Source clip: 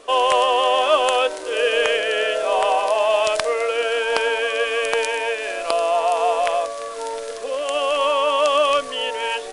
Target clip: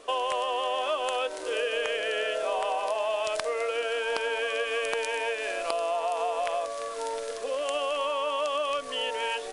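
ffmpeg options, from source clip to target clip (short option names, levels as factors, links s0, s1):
-af "acompressor=threshold=0.0891:ratio=6,volume=0.596"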